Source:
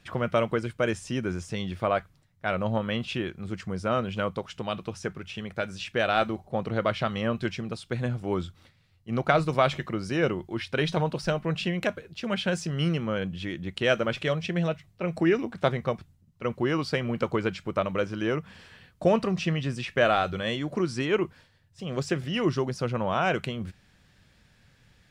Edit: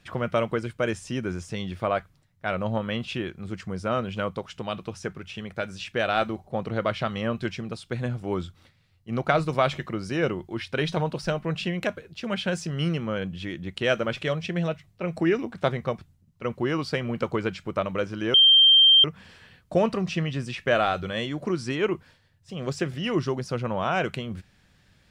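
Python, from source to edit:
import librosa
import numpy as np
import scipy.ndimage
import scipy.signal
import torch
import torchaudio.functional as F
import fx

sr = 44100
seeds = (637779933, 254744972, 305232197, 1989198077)

y = fx.edit(x, sr, fx.insert_tone(at_s=18.34, length_s=0.7, hz=3160.0, db=-12.0), tone=tone)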